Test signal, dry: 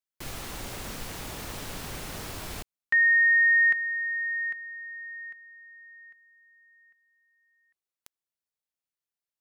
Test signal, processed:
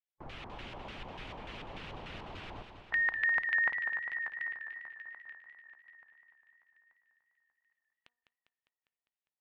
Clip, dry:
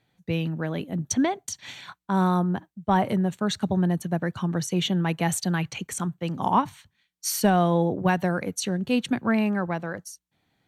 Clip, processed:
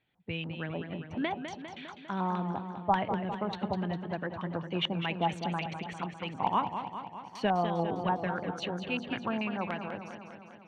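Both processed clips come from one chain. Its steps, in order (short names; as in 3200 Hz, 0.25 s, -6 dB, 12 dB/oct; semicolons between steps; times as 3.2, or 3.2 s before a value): de-hum 241.6 Hz, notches 18; LFO low-pass square 3.4 Hz 920–2900 Hz; high shelf 5700 Hz -5.5 dB; harmonic-percussive split harmonic -6 dB; warbling echo 0.201 s, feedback 65%, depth 90 cents, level -8.5 dB; gain -6 dB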